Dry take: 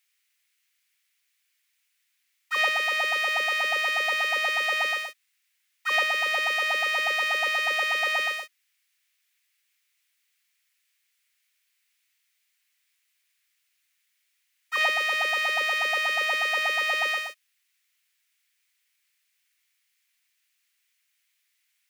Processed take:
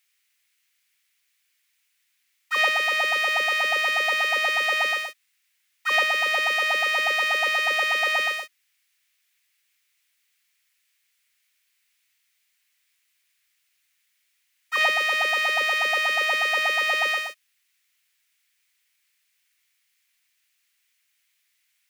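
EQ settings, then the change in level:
low-shelf EQ 170 Hz +9 dB
+2.5 dB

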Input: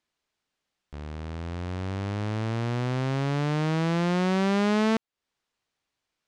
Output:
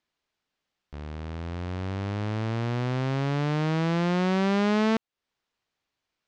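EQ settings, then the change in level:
low-pass filter 6,400 Hz 12 dB per octave
0.0 dB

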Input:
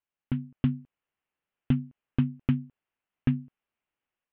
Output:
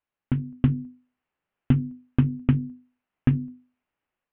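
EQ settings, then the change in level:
high-frequency loss of the air 310 metres
mains-hum notches 50/100/150/200/250/300/350/400/450/500 Hz
+7.0 dB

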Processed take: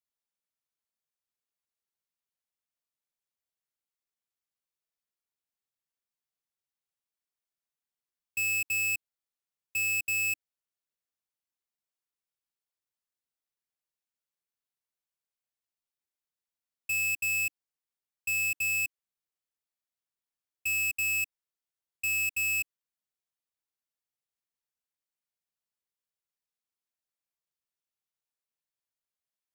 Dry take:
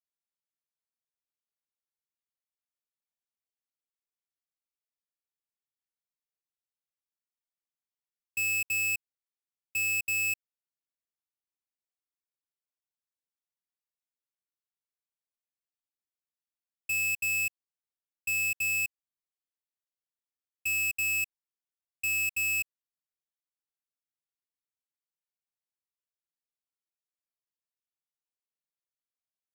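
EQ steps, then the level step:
parametric band 300 Hz −5 dB 0.26 octaves
0.0 dB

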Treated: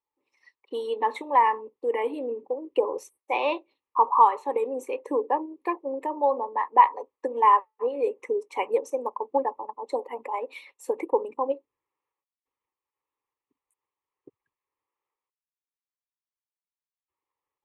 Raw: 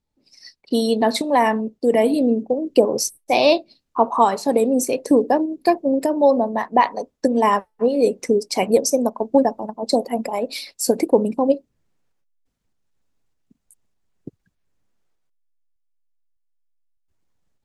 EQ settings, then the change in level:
resonant band-pass 1,100 Hz, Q 1.4
phaser with its sweep stopped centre 1,000 Hz, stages 8
+2.0 dB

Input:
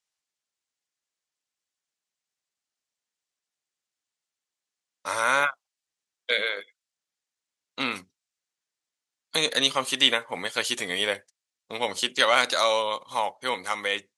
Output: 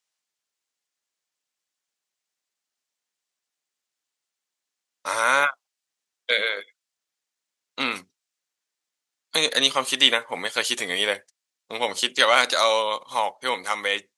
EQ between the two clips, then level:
low-shelf EQ 130 Hz −11.5 dB
+3.0 dB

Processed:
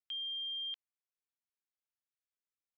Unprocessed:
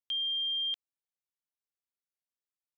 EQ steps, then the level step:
resonant band-pass 1,700 Hz, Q 0.8
−4.0 dB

